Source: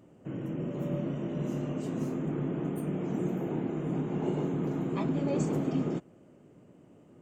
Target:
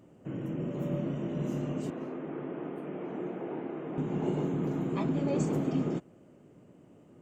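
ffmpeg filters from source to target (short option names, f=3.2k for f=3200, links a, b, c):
-filter_complex "[0:a]asettb=1/sr,asplit=3[a][b][c];[a]atrim=end=1.904[d];[b]atrim=start=1.9:end=3.98,asetpts=PTS-STARTPTS,afade=t=in:d=0.004:c=qsin,afade=t=out:st=2.076:d=0.004:c=qsin,acrossover=split=300 3300:gain=0.178 1 0.0631[e][f][g];[e][f][g]amix=inputs=3:normalize=0[h];[c]atrim=start=3.976[i];[d][h]acrossfade=d=0.004:c1=hsin:c2=qsin[j];[j][i]acrossfade=d=0.004:c1=qsin:c2=hsin"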